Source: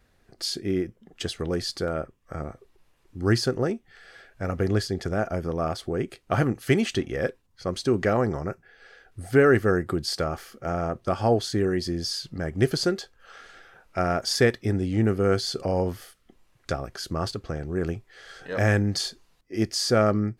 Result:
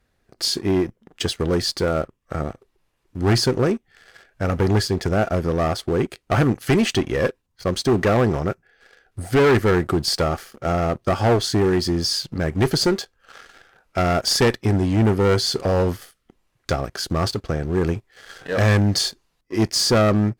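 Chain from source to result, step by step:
leveller curve on the samples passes 2
asymmetric clip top −15.5 dBFS

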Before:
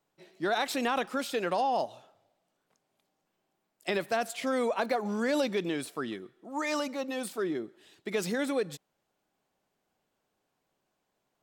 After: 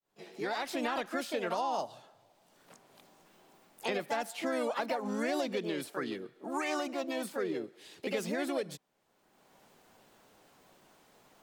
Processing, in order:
fade in at the beginning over 0.92 s
pitch-shifted copies added +4 semitones −4 dB
multiband upward and downward compressor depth 70%
level −5 dB

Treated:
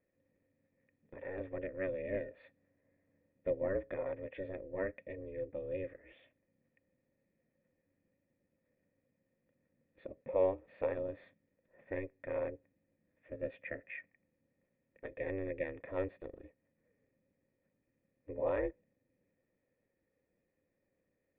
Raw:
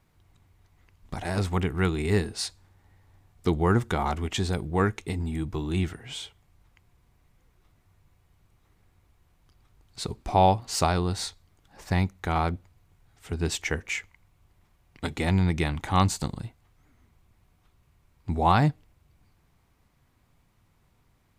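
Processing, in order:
ring modulation 190 Hz
formant resonators in series e
level +1.5 dB

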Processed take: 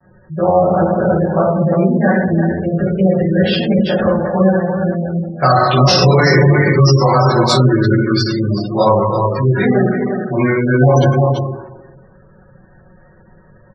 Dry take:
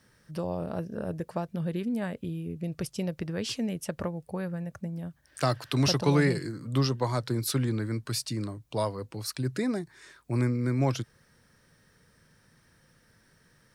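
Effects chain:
mains-hum notches 60/120/180/240/300/360/420/480 Hz
low-pass that shuts in the quiet parts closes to 840 Hz, open at −22.5 dBFS
single-tap delay 346 ms −6.5 dB
dense smooth reverb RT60 1.2 s, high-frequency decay 0.6×, DRR −10 dB
pitch vibrato 0.47 Hz 25 cents
gate on every frequency bin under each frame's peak −25 dB strong
parametric band 220 Hz −6.5 dB 1.7 octaves
comb filter 5.4 ms, depth 61%
boost into a limiter +12 dB
level −1 dB

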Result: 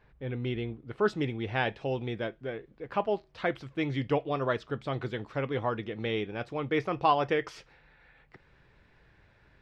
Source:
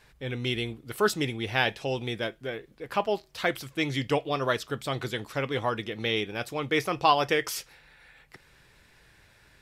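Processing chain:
head-to-tape spacing loss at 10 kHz 41 dB, from 0:01.05 at 10 kHz 29 dB

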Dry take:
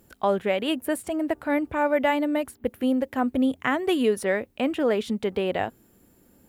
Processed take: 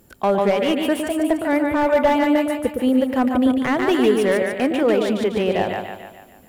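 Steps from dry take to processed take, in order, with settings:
echo with a time of its own for lows and highs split 690 Hz, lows 111 ms, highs 146 ms, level −4 dB
slew-rate limiting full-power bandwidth 110 Hz
level +4.5 dB

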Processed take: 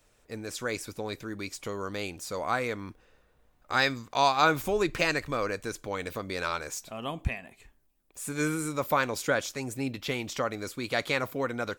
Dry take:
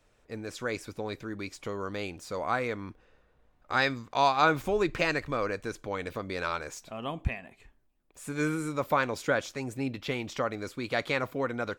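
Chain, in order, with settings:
high-shelf EQ 5,700 Hz +11.5 dB

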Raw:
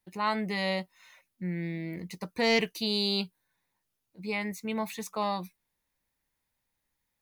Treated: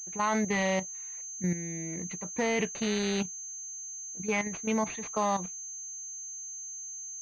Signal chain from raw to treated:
low-shelf EQ 76 Hz −3 dB
output level in coarse steps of 11 dB
switching amplifier with a slow clock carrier 6,300 Hz
level +6 dB

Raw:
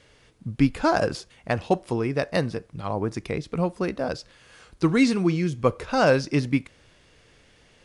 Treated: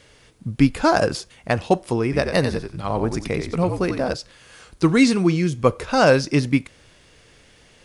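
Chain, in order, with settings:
high-shelf EQ 6,900 Hz +6.5 dB
0:02.03–0:04.14: echo with shifted repeats 90 ms, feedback 31%, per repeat −63 Hz, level −7 dB
level +4 dB

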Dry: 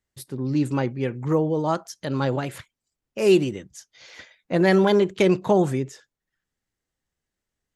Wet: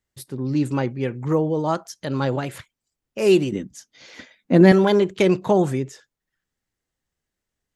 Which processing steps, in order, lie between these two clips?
0:03.52–0:04.72: parametric band 240 Hz +14.5 dB 0.95 octaves
level +1 dB

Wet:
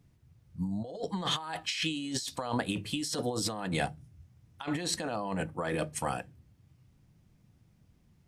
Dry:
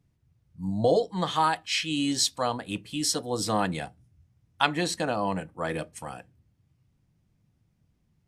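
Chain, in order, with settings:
hum removal 50.5 Hz, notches 3
compressor whose output falls as the input rises −34 dBFS, ratio −1

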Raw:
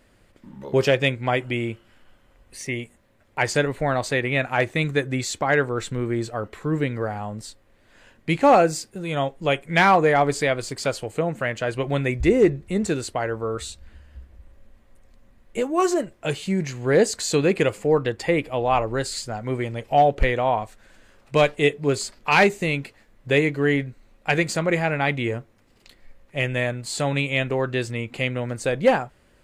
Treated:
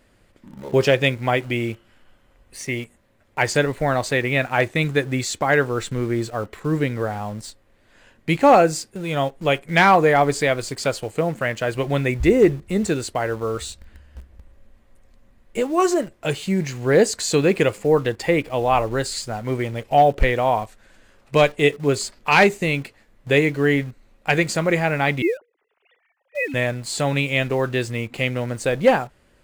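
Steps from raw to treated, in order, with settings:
0:25.22–0:26.54: three sine waves on the formant tracks
in parallel at −11 dB: bit reduction 6 bits

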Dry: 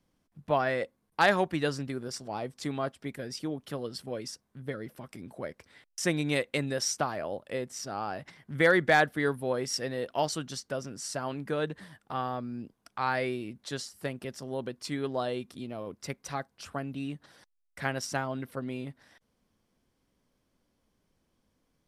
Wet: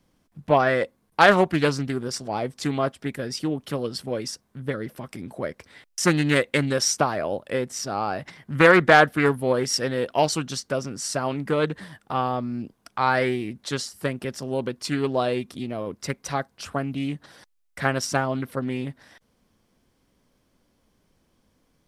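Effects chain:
highs frequency-modulated by the lows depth 0.27 ms
level +8 dB

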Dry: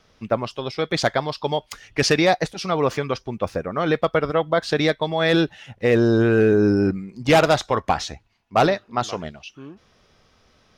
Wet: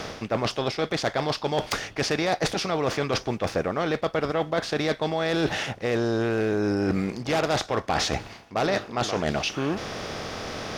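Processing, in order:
compressor on every frequency bin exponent 0.6
reversed playback
downward compressor 10 to 1, threshold −26 dBFS, peak gain reduction 16.5 dB
reversed playback
harmonic generator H 5 −10 dB, 7 −18 dB, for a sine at −13 dBFS

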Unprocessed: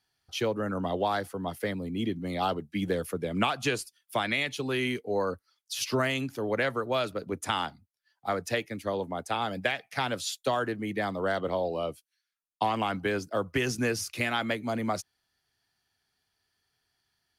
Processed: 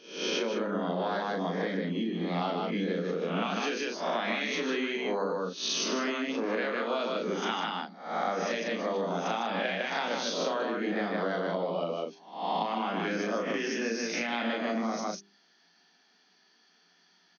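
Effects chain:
peak hold with a rise ahead of every peak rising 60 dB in 0.56 s
low-shelf EQ 220 Hz +8.5 dB
mains-hum notches 50/100/150/200/250/300/350/400 Hz
loudspeakers that aren't time-aligned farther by 12 metres −4 dB, 52 metres −4 dB, 65 metres −9 dB
downward compressor 10 to 1, threshold −36 dBFS, peak gain reduction 19.5 dB
brick-wall band-pass 170–6,600 Hz
level +8.5 dB

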